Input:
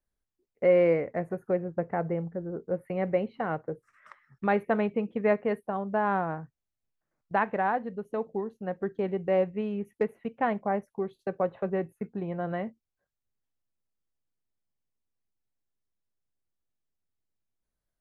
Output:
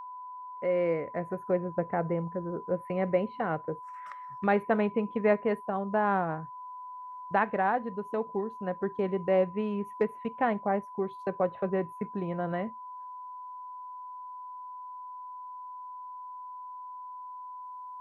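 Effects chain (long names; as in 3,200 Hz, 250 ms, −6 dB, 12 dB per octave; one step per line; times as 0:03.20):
fade in at the beginning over 1.60 s
steady tone 1,000 Hz −43 dBFS
one half of a high-frequency compander encoder only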